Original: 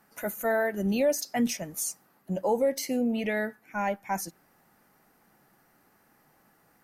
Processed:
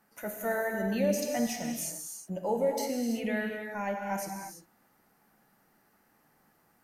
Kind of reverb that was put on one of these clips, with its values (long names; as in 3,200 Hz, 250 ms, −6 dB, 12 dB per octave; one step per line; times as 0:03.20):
reverb whose tail is shaped and stops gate 370 ms flat, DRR 1.5 dB
level −5.5 dB